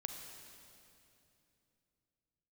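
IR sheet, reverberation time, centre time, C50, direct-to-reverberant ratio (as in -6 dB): 2.8 s, 66 ms, 4.5 dB, 4.0 dB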